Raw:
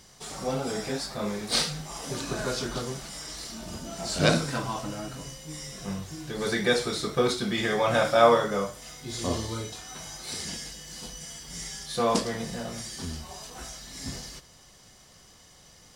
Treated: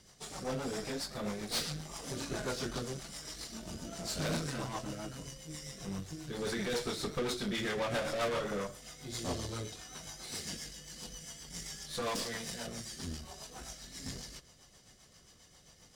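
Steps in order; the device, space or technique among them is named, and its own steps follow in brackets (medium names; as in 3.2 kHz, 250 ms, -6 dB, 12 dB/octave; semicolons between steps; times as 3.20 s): 12.02–12.67 s: tilt shelf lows -6 dB; overdriven rotary cabinet (valve stage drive 29 dB, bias 0.7; rotary cabinet horn 7.5 Hz)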